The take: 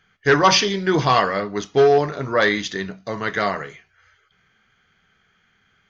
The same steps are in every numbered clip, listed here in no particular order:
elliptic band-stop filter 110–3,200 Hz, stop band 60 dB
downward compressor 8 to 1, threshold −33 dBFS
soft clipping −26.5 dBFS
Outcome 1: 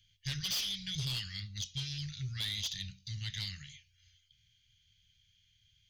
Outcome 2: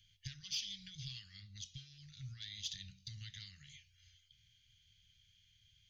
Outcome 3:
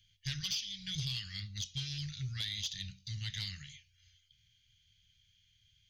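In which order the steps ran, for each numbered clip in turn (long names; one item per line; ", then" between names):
elliptic band-stop filter, then soft clipping, then downward compressor
downward compressor, then elliptic band-stop filter, then soft clipping
elliptic band-stop filter, then downward compressor, then soft clipping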